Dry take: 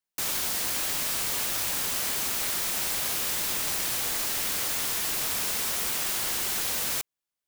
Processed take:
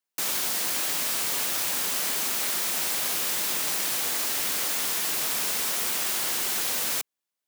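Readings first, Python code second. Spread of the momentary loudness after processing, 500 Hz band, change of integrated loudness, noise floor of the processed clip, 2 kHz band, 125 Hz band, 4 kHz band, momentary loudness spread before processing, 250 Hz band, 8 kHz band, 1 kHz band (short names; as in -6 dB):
0 LU, +1.5 dB, +1.5 dB, under -85 dBFS, +1.5 dB, -4.5 dB, +1.5 dB, 0 LU, +0.5 dB, +1.5 dB, +1.5 dB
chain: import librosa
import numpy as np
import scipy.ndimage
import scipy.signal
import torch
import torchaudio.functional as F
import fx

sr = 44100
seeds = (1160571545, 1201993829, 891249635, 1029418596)

y = scipy.signal.sosfilt(scipy.signal.butter(2, 170.0, 'highpass', fs=sr, output='sos'), x)
y = F.gain(torch.from_numpy(y), 1.5).numpy()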